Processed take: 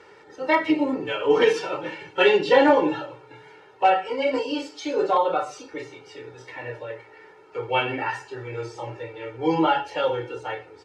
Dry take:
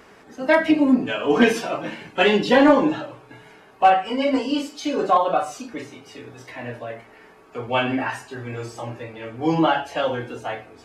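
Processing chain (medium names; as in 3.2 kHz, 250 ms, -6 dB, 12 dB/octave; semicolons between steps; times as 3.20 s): band-pass 110–5900 Hz; comb 2.2 ms, depth 100%; trim -4 dB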